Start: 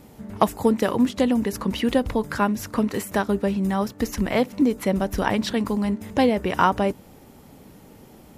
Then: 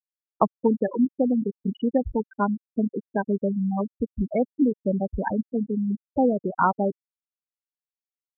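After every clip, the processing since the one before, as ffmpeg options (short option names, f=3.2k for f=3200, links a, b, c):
-af "afftfilt=real='re*gte(hypot(re,im),0.282)':imag='im*gte(hypot(re,im),0.282)':win_size=1024:overlap=0.75,volume=-1.5dB"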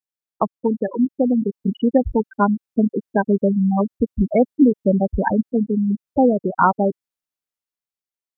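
-af "dynaudnorm=f=180:g=11:m=8dB"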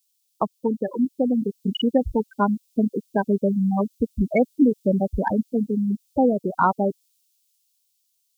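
-af "aexciter=amount=10:drive=7.8:freq=2.6k,volume=-3.5dB"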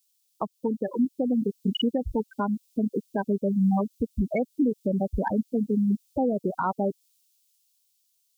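-af "alimiter=limit=-16.5dB:level=0:latency=1:release=206"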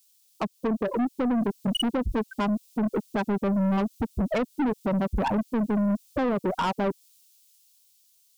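-af "aeval=exprs='(tanh(31.6*val(0)+0.1)-tanh(0.1))/31.6':c=same,volume=8dB"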